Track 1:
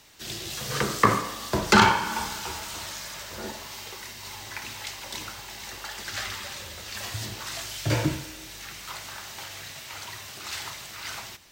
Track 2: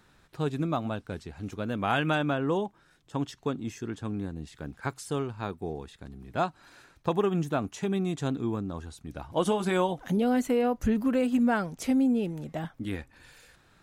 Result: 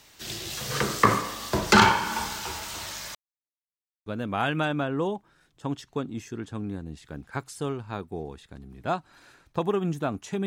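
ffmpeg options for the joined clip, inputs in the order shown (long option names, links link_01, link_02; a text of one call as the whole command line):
ffmpeg -i cue0.wav -i cue1.wav -filter_complex "[0:a]apad=whole_dur=10.46,atrim=end=10.46,asplit=2[link_01][link_02];[link_01]atrim=end=3.15,asetpts=PTS-STARTPTS,afade=type=out:start_time=3.146:duration=0.004:curve=hsin[link_03];[link_02]atrim=start=3.15:end=4.06,asetpts=PTS-STARTPTS,volume=0[link_04];[1:a]atrim=start=1.56:end=7.96,asetpts=PTS-STARTPTS,afade=type=in:duration=0.004:curve=hsin[link_05];[link_03][link_04][link_05]concat=n=3:v=0:a=1" out.wav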